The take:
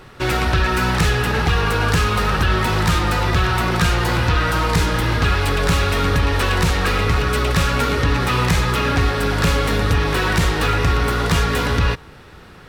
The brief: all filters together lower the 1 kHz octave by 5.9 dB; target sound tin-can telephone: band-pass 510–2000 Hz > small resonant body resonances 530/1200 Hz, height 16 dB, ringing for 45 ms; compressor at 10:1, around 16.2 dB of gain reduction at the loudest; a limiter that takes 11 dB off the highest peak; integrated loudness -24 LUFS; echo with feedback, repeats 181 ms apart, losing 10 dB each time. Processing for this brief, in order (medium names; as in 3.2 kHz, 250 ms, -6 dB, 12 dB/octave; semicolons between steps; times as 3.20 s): peaking EQ 1 kHz -7 dB; compression 10:1, threshold -30 dBFS; peak limiter -31.5 dBFS; band-pass 510–2000 Hz; feedback delay 181 ms, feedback 32%, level -10 dB; small resonant body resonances 530/1200 Hz, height 16 dB, ringing for 45 ms; trim +17 dB